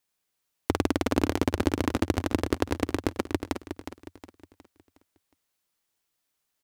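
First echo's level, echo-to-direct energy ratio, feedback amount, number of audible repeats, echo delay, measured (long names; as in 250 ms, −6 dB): −9.0 dB, −8.0 dB, 41%, 4, 363 ms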